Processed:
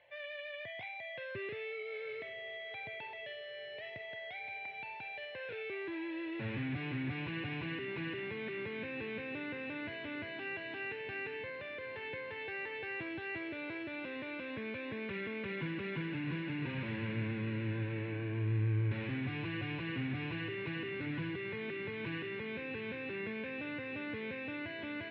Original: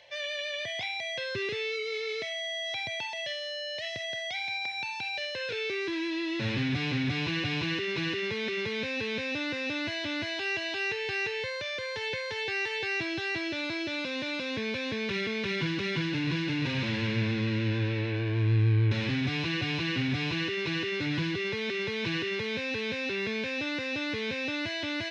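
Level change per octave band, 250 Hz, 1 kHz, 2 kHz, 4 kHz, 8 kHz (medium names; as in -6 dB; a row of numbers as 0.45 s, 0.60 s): -7.5 dB, -8.0 dB, -9.0 dB, -16.5 dB, under -30 dB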